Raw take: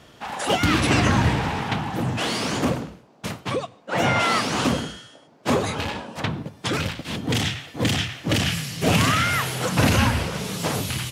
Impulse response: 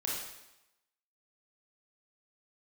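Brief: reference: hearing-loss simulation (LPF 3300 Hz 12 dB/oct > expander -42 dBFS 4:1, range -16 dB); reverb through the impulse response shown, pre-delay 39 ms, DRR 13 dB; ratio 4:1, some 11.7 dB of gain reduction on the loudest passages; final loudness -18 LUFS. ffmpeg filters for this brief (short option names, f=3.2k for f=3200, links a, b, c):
-filter_complex "[0:a]acompressor=threshold=-29dB:ratio=4,asplit=2[a][b];[1:a]atrim=start_sample=2205,adelay=39[c];[b][c]afir=irnorm=-1:irlink=0,volume=-17dB[d];[a][d]amix=inputs=2:normalize=0,lowpass=3.3k,agate=range=-16dB:threshold=-42dB:ratio=4,volume=14dB"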